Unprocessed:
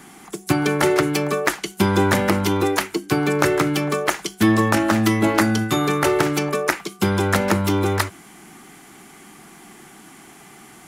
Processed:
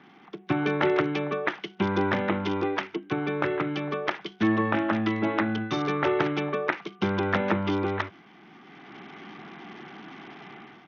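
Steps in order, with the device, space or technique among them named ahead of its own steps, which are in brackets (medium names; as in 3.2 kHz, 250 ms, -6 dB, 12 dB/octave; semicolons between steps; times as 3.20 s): Bluetooth headset (high-pass 120 Hz 12 dB/octave; level rider gain up to 10.5 dB; resampled via 8 kHz; trim -8.5 dB; SBC 64 kbps 48 kHz)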